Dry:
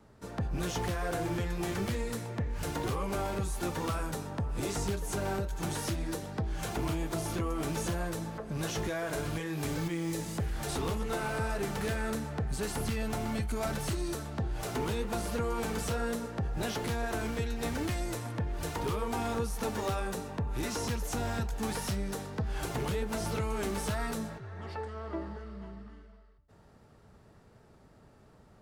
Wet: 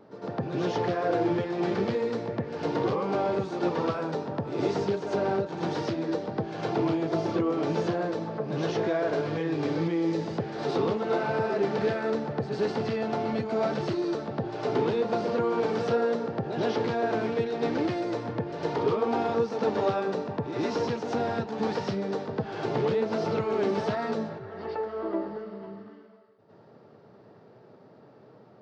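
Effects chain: elliptic band-pass 120–4900 Hz, stop band 40 dB; bell 450 Hz +10 dB 2 oct; reverse echo 0.106 s -7 dB

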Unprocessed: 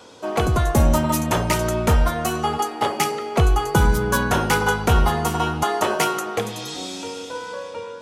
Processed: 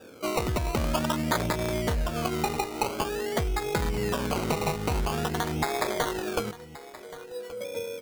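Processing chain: Wiener smoothing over 41 samples; in parallel at -1 dB: limiter -17 dBFS, peak gain reduction 9 dB; on the sum: low shelf 210 Hz -7.5 dB; compressor, threshold -23 dBFS, peak gain reduction 9.5 dB; 0.83–1.46 synth low-pass 1400 Hz, resonance Q 2.7; decimation with a swept rate 21×, swing 60% 0.48 Hz; 6.51–7.61 resonator 490 Hz, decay 0.16 s, harmonics all, mix 100%; on a send: echo 1.126 s -17 dB; on the sum: gain -1.5 dB

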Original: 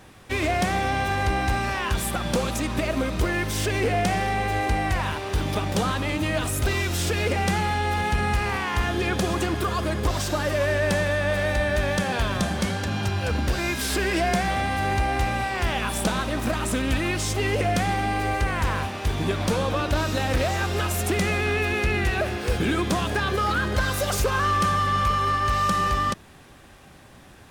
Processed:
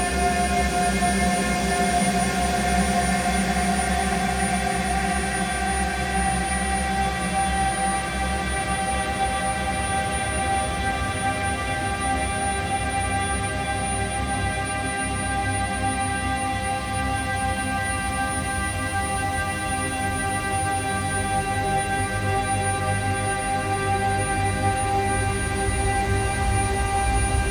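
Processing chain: whine 9600 Hz -34 dBFS; Paulstretch 40×, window 0.25 s, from 14.3

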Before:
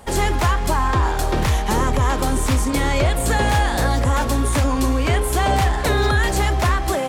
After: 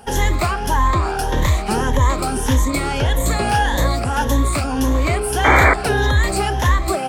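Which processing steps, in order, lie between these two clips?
moving spectral ripple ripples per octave 1.1, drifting +1.7 Hz, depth 12 dB; 4.55–5.58 overloaded stage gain 11 dB; 5.44–5.74 painted sound noise 250–2400 Hz -12 dBFS; gain -1 dB

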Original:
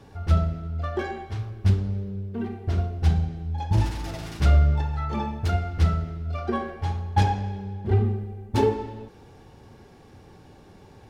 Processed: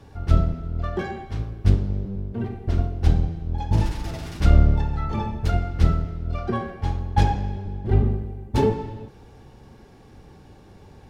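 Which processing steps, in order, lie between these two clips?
octaver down 1 oct, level 0 dB

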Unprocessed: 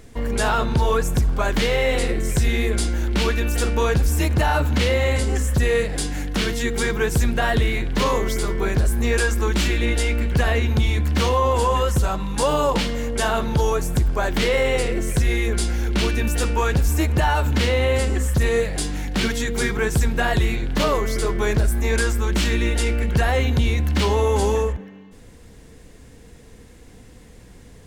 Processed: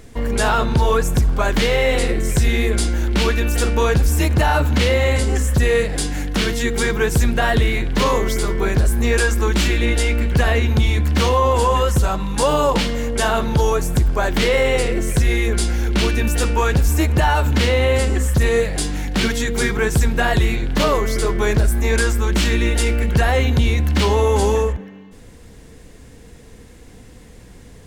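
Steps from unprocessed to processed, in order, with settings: 22.74–23.14 high shelf 12000 Hz +6 dB; gain +3 dB

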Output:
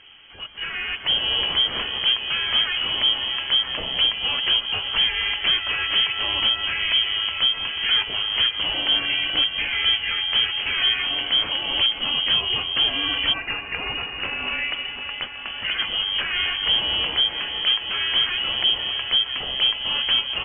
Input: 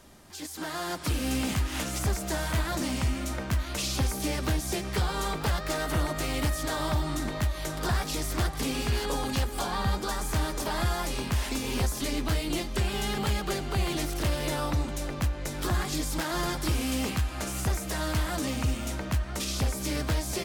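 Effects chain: 13.32–15.78 HPF 420 Hz -> 140 Hz 24 dB/oct; thin delay 0.265 s, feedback 53%, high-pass 1500 Hz, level -9.5 dB; inverted band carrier 3200 Hz; gain +5.5 dB

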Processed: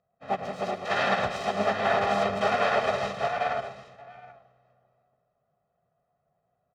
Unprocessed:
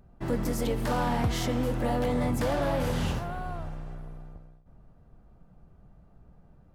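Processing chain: self-modulated delay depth 0.53 ms; Chebyshev high-pass 420 Hz, order 2; comb 1.3 ms, depth 86%; in parallel at +1 dB: limiter -27.5 dBFS, peak gain reduction 11 dB; on the sum: notch 930 Hz, Q 21; formant-preserving pitch shift -3.5 st; air absorption 140 m; on a send: tapped delay 0.106/0.207/0.777 s -7/-10/-5 dB; on the sum: upward expander 2.5:1, over -38 dBFS; gain +3.5 dB

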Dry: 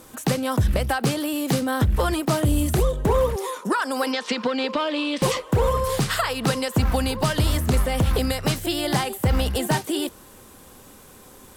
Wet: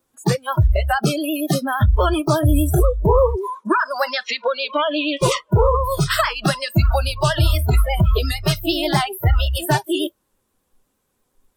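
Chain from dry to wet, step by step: vibrato 8.5 Hz 82 cents; spectral noise reduction 29 dB; gain +5.5 dB

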